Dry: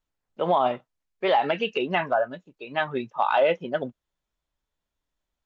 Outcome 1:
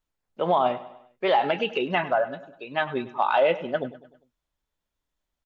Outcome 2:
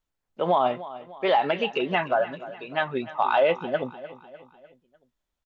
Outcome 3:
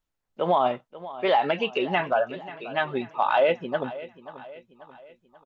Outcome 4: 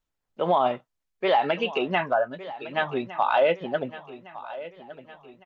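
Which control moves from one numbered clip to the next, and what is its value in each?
feedback delay, time: 100 ms, 300 ms, 536 ms, 1159 ms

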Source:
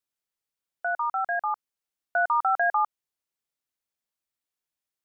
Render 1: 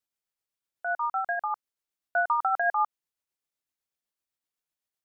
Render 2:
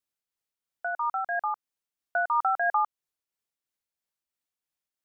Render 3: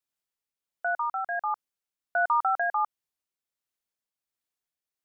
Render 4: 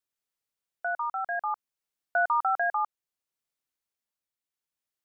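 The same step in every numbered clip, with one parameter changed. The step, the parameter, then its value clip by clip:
tremolo, rate: 7.9 Hz, 3 Hz, 1.4 Hz, 0.63 Hz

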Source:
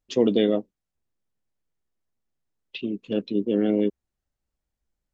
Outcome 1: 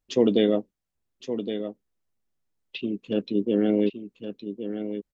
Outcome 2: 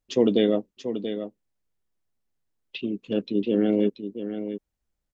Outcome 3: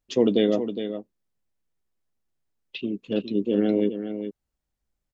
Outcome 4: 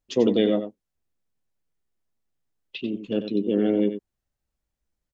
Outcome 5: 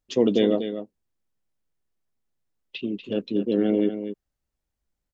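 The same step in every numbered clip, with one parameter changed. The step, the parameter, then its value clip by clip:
delay, time: 1116 ms, 683 ms, 412 ms, 92 ms, 241 ms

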